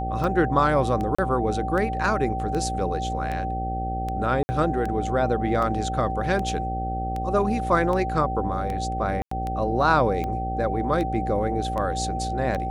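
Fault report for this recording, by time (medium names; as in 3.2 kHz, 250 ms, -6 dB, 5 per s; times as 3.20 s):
buzz 60 Hz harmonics 12 -30 dBFS
tick 78 rpm -18 dBFS
whine 770 Hz -28 dBFS
1.15–1.19 s: dropout 35 ms
4.43–4.49 s: dropout 60 ms
9.22–9.31 s: dropout 94 ms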